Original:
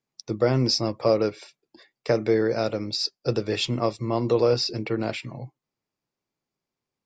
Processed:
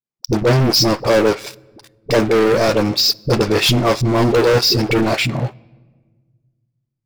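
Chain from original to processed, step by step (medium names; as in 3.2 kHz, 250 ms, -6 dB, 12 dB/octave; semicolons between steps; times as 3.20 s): waveshaping leveller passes 5; phase dispersion highs, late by 49 ms, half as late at 380 Hz; on a send: reverberation RT60 1.5 s, pre-delay 5 ms, DRR 23 dB; on the sum: trim -1.5 dB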